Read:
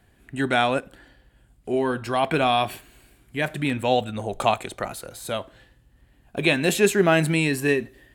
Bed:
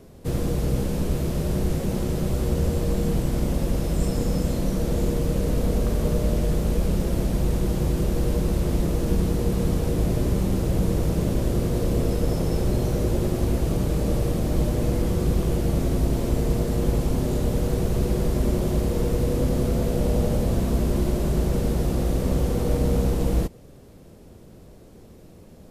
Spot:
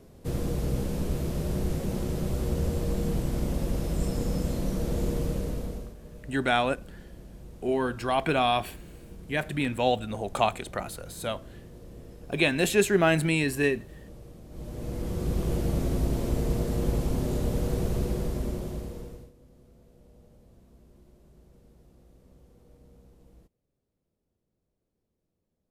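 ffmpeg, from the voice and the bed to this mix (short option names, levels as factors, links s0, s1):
-filter_complex "[0:a]adelay=5950,volume=0.668[s0];[1:a]volume=5.01,afade=t=out:st=5.23:d=0.72:silence=0.11885,afade=t=in:st=14.49:d=1.05:silence=0.112202,afade=t=out:st=17.88:d=1.44:silence=0.0334965[s1];[s0][s1]amix=inputs=2:normalize=0"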